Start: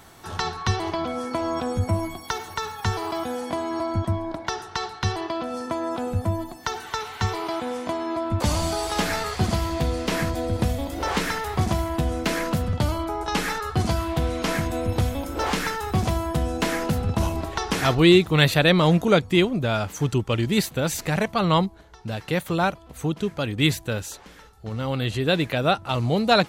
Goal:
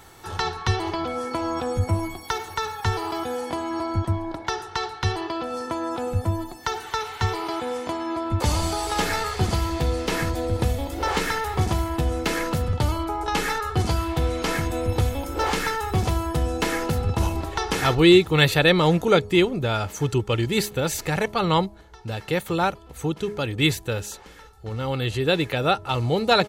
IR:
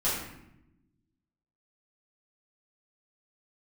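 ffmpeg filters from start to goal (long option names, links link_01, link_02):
-af "aecho=1:1:2.3:0.37,bandreject=frequency=207.7:width_type=h:width=4,bandreject=frequency=415.4:width_type=h:width=4,bandreject=frequency=623.1:width_type=h:width=4"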